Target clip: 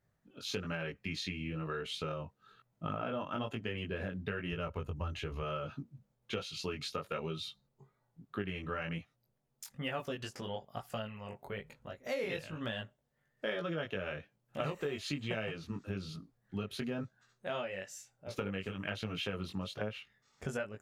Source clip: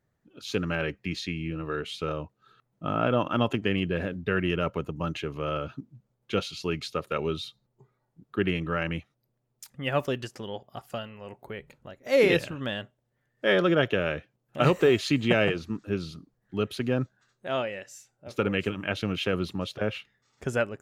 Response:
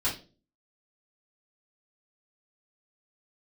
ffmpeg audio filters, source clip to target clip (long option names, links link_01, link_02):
-filter_complex "[0:a]asettb=1/sr,asplit=3[link_01][link_02][link_03];[link_01]atrim=end=4.524[link_04];[link_02]atrim=start=4.52:end=5.42,asetpts=PTS-STARTPTS,afade=type=in:duration=0.004:curve=qsin,afade=type=out:start_time=0.896:duration=0.004:curve=qsin,lowshelf=frequency=110:width_type=q:width=1.5:gain=11[link_05];[link_03]atrim=start=5.416[link_06];[link_04][link_05]acrossfade=duration=0.004:curve1=hsin:curve2=qsin[link_07];[link_07][link_06]acrossfade=duration=0.004:curve1=qsin:curve2=hsin,flanger=delay=18:depth=3.3:speed=1.1,equalizer=frequency=330:width=2.6:gain=-5.5,acompressor=threshold=-36dB:ratio=6,volume=1.5dB"